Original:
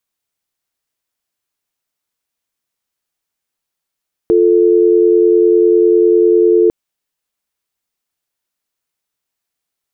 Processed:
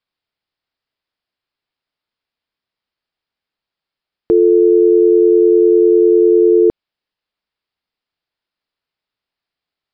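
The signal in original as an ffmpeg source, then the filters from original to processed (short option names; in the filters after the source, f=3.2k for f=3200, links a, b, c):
-f lavfi -i "aevalsrc='0.335*(sin(2*PI*350*t)+sin(2*PI*440*t))':d=2.4:s=44100"
-af "aresample=11025,aresample=44100"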